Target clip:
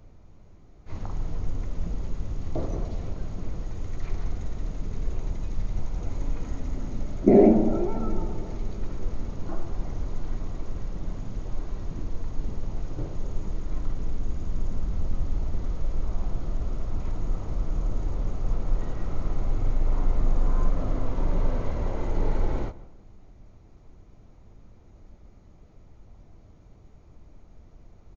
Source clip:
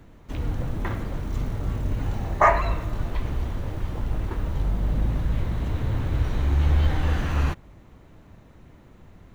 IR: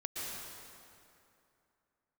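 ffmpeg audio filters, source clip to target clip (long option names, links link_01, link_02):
-filter_complex "[0:a]asetrate=14641,aresample=44100,asplit=2[link_01][link_02];[link_02]adelay=153,lowpass=frequency=2400:poles=1,volume=-17dB,asplit=2[link_03][link_04];[link_04]adelay=153,lowpass=frequency=2400:poles=1,volume=0.37,asplit=2[link_05][link_06];[link_06]adelay=153,lowpass=frequency=2400:poles=1,volume=0.37[link_07];[link_03][link_05][link_07]amix=inputs=3:normalize=0[link_08];[link_01][link_08]amix=inputs=2:normalize=0"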